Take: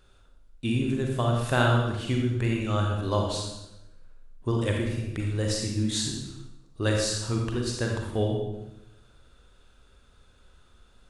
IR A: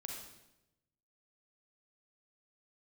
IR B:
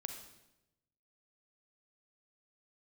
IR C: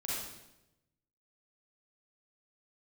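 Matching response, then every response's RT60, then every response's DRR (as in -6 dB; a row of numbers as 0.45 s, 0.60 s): A; 0.90 s, 0.90 s, 0.90 s; 0.0 dB, 5.0 dB, -7.0 dB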